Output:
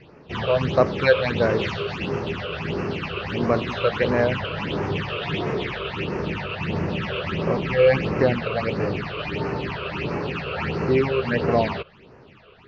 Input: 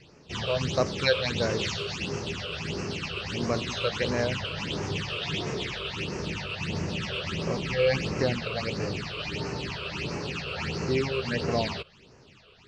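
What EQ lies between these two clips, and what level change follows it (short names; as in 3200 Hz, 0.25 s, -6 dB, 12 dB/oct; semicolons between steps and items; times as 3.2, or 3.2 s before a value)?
LPF 2000 Hz 12 dB/oct; low shelf 190 Hz -5 dB; +8.5 dB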